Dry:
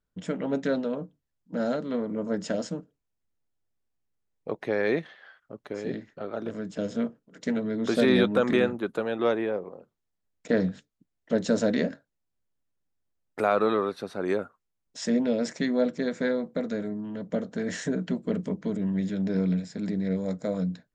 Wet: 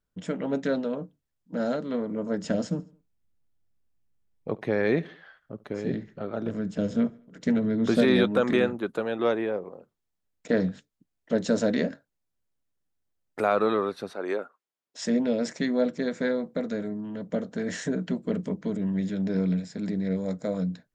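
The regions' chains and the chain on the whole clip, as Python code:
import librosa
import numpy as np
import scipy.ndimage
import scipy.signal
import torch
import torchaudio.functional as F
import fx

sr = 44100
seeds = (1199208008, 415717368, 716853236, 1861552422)

y = fx.chain(x, sr, fx.bass_treble(bass_db=8, treble_db=-2),
    fx.echo_feedback(ms=71, feedback_pct=48, wet_db=-22), at=(2.44, 8.02))
y = fx.chain(y, sr, fx.highpass(hz=360.0, slope=12),
    fx.high_shelf(hz=7300.0, db=-10.0), at=(14.13, 14.99))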